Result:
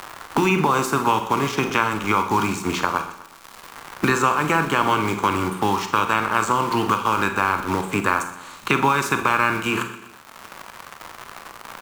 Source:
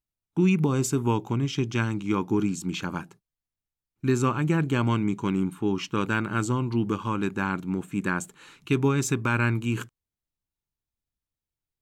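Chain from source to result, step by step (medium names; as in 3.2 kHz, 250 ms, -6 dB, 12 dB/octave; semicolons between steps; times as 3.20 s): spectral peaks clipped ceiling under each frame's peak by 16 dB; recorder AGC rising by 6.9 dB/s; crackle 220 per s -37 dBFS; in parallel at -4 dB: bit crusher 5-bit; on the sum: peaking EQ 1.1 kHz +10 dB 1.1 oct; hum notches 60/120/180 Hz; on a send: feedback delay 123 ms, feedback 37%, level -17 dB; on the sum: Schroeder reverb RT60 0.35 s, combs from 33 ms, DRR 8 dB; three bands compressed up and down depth 70%; trim -4 dB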